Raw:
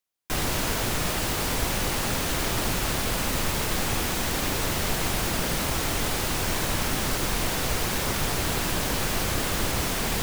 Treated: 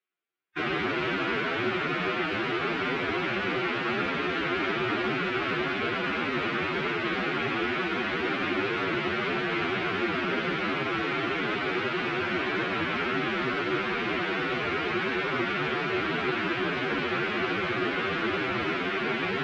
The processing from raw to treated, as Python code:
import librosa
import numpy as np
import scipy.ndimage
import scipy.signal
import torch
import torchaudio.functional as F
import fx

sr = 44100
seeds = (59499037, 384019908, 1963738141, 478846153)

y = fx.cabinet(x, sr, low_hz=190.0, low_slope=12, high_hz=3100.0, hz=(370.0, 560.0, 900.0, 1400.0, 2300.0), db=(8, -5, -6, 6, 4))
y = fx.stretch_vocoder(y, sr, factor=1.9)
y = F.gain(torch.from_numpy(y), 1.0).numpy()